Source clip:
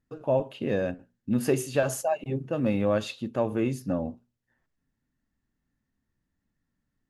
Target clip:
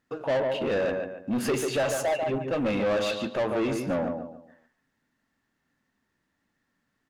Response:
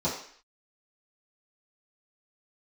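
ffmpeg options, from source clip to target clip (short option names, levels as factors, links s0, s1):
-filter_complex "[0:a]asplit=2[s0][s1];[s1]adelay=143,lowpass=f=3100:p=1,volume=0.376,asplit=2[s2][s3];[s3]adelay=143,lowpass=f=3100:p=1,volume=0.31,asplit=2[s4][s5];[s5]adelay=143,lowpass=f=3100:p=1,volume=0.31,asplit=2[s6][s7];[s7]adelay=143,lowpass=f=3100:p=1,volume=0.31[s8];[s0][s2][s4][s6][s8]amix=inputs=5:normalize=0,asplit=2[s9][s10];[s10]highpass=f=720:p=1,volume=17.8,asoftclip=type=tanh:threshold=0.266[s11];[s9][s11]amix=inputs=2:normalize=0,lowpass=f=3400:p=1,volume=0.501,volume=0.473"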